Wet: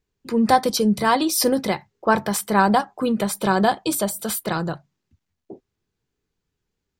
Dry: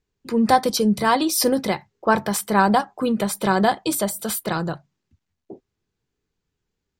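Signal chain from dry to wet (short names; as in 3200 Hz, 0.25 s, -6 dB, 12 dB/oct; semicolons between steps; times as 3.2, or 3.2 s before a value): 3.4–4.19 notch 2000 Hz, Q 11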